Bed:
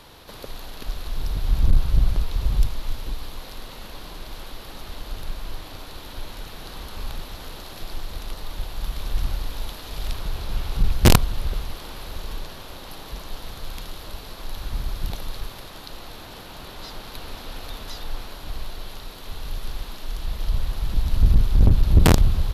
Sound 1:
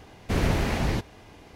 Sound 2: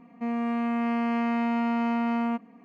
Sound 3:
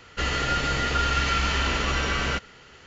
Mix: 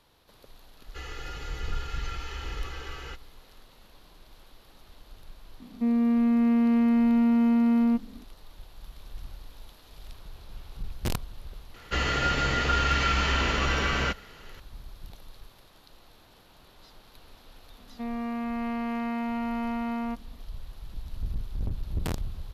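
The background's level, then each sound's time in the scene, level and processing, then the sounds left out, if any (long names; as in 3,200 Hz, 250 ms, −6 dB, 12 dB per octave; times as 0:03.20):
bed −16.5 dB
0:00.77: mix in 3 −17.5 dB + comb filter 2.4 ms, depth 90%
0:05.60: mix in 2 −5.5 dB + low shelf with overshoot 510 Hz +9.5 dB, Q 1.5
0:11.74: mix in 3 −0.5 dB + high-shelf EQ 6,400 Hz −7 dB
0:17.78: mix in 2 −4.5 dB
not used: 1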